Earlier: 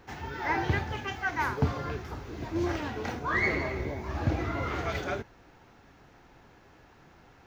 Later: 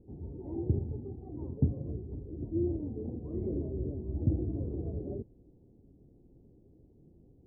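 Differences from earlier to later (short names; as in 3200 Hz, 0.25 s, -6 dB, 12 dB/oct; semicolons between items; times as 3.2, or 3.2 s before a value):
speech -10.5 dB; background: add inverse Chebyshev low-pass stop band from 1400 Hz, stop band 60 dB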